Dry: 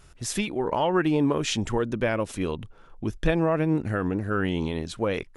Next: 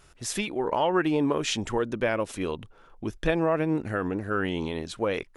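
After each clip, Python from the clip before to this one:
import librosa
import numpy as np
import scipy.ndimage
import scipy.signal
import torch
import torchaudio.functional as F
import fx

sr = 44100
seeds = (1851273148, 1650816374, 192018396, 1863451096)

y = fx.bass_treble(x, sr, bass_db=-6, treble_db=-1)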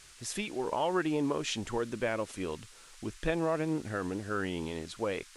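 y = fx.dmg_noise_band(x, sr, seeds[0], low_hz=1100.0, high_hz=9600.0, level_db=-50.0)
y = y * 10.0 ** (-6.0 / 20.0)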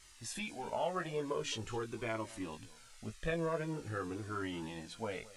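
y = fx.doubler(x, sr, ms=18.0, db=-5.0)
y = y + 10.0 ** (-19.0 / 20.0) * np.pad(y, (int(218 * sr / 1000.0), 0))[:len(y)]
y = fx.comb_cascade(y, sr, direction='falling', hz=0.45)
y = y * 10.0 ** (-2.0 / 20.0)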